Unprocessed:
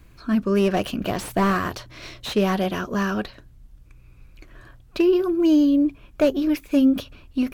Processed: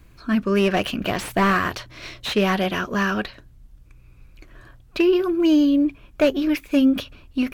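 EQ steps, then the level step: dynamic bell 2.2 kHz, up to +7 dB, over -43 dBFS, Q 0.81; 0.0 dB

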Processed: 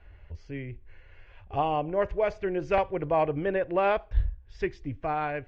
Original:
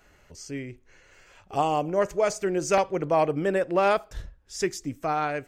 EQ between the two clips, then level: low-pass 3.2 kHz 24 dB/octave; resonant low shelf 120 Hz +13 dB, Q 1.5; band-stop 1.3 kHz, Q 8.4; -2.0 dB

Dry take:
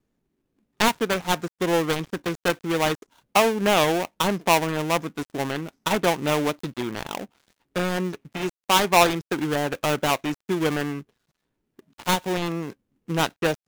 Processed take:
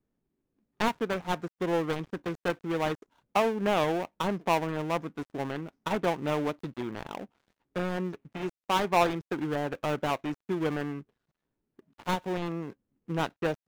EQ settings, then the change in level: treble shelf 2.7 kHz -8.5 dB; treble shelf 5.7 kHz -5 dB; -5.5 dB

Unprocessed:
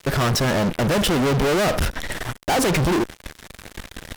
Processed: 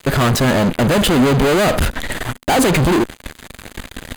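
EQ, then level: peaking EQ 250 Hz +4.5 dB 0.25 oct; band-stop 5.5 kHz, Q 5.4; +5.0 dB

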